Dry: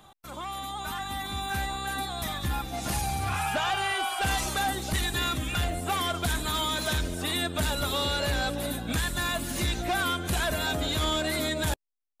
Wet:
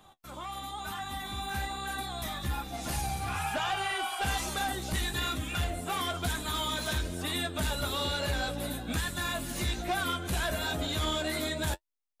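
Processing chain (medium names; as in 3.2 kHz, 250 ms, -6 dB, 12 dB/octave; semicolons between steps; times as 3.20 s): flange 1.1 Hz, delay 9.9 ms, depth 7.5 ms, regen -33%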